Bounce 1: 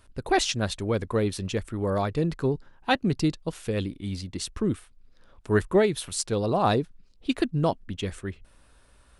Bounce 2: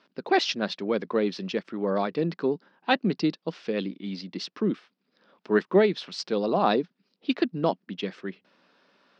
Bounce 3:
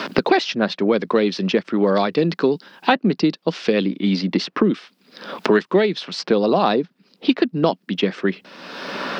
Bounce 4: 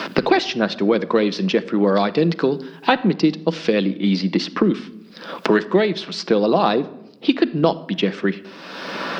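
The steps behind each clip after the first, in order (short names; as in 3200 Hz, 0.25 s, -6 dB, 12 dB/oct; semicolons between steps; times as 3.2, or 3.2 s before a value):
Chebyshev band-pass 180–5200 Hz, order 4; gain +1 dB
three-band squash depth 100%; gain +7.5 dB
shoebox room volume 3200 m³, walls furnished, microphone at 0.7 m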